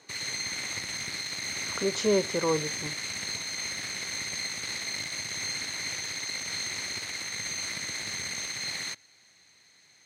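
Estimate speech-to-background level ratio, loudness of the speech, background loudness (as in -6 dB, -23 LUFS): 2.0 dB, -30.0 LUFS, -32.0 LUFS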